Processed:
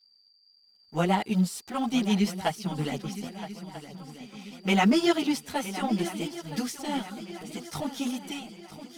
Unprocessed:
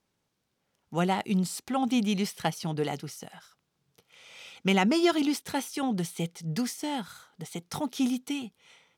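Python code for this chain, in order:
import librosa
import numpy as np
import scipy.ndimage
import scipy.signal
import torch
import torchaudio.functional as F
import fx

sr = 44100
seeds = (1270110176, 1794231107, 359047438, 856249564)

p1 = fx.law_mismatch(x, sr, coded='A')
p2 = p1 + 10.0 ** (-60.0 / 20.0) * np.sin(2.0 * np.pi * 4700.0 * np.arange(len(p1)) / sr)
p3 = fx.chorus_voices(p2, sr, voices=4, hz=1.2, base_ms=12, depth_ms=3.0, mix_pct=65)
p4 = p3 + fx.echo_swing(p3, sr, ms=1289, ratio=3, feedback_pct=45, wet_db=-13.5, dry=0)
y = p4 * librosa.db_to_amplitude(4.0)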